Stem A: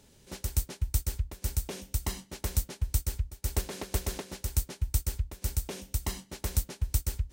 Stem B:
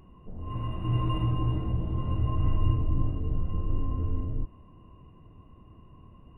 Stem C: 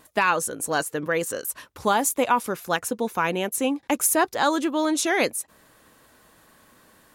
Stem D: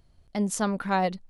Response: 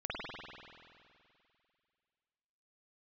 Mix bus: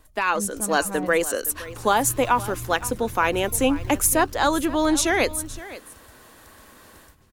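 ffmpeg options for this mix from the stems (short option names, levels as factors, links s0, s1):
-filter_complex "[0:a]acompressor=threshold=0.0141:ratio=6,volume=0.355,asplit=2[s0][s1];[s1]volume=0.447[s2];[1:a]acrusher=samples=25:mix=1:aa=0.000001:lfo=1:lforange=15:lforate=3.3,adelay=1150,volume=0.355[s3];[2:a]highpass=f=220:w=0.5412,highpass=f=220:w=1.3066,dynaudnorm=f=160:g=3:m=3.98,volume=0.531,asplit=2[s4][s5];[s5]volume=0.141[s6];[3:a]aemphasis=mode=reproduction:type=bsi,volume=0.282,asplit=2[s7][s8];[s8]apad=whole_len=322827[s9];[s0][s9]sidechaingate=range=0.0224:threshold=0.00562:ratio=16:detection=peak[s10];[s2][s6]amix=inputs=2:normalize=0,aecho=0:1:517:1[s11];[s10][s3][s4][s7][s11]amix=inputs=5:normalize=0"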